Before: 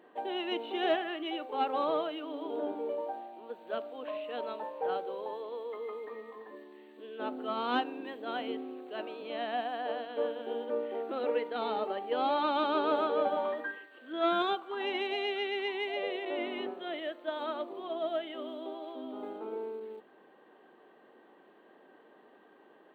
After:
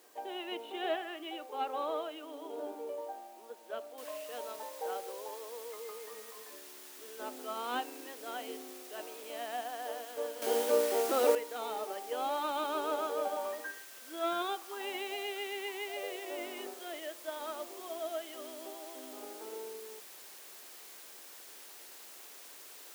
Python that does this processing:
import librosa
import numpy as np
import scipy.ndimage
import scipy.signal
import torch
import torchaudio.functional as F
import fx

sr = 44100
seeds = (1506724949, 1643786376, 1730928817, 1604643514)

y = fx.noise_floor_step(x, sr, seeds[0], at_s=3.98, before_db=-59, after_db=-47, tilt_db=0.0)
y = fx.edit(y, sr, fx.clip_gain(start_s=10.42, length_s=0.93, db=11.0), tone=tone)
y = scipy.signal.sosfilt(scipy.signal.butter(2, 340.0, 'highpass', fs=sr, output='sos'), y)
y = y * librosa.db_to_amplitude(-4.5)